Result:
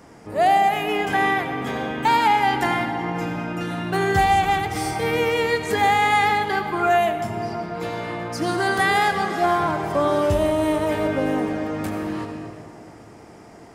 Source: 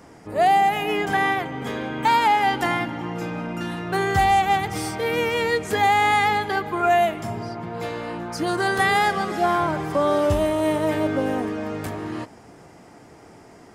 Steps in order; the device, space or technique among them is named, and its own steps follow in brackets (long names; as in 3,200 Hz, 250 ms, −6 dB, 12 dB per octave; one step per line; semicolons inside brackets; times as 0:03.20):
compressed reverb return (on a send at −3 dB: convolution reverb RT60 2.3 s, pre-delay 68 ms + downward compressor, threshold −22 dBFS, peak gain reduction 9.5 dB)